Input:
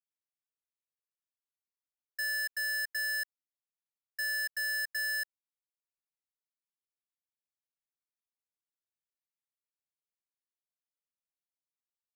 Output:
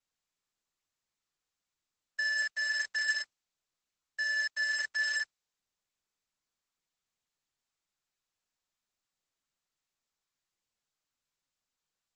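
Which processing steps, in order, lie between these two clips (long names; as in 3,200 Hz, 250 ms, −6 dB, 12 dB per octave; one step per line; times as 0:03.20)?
low shelf with overshoot 490 Hz −14 dB, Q 1.5
level +2 dB
Opus 10 kbit/s 48,000 Hz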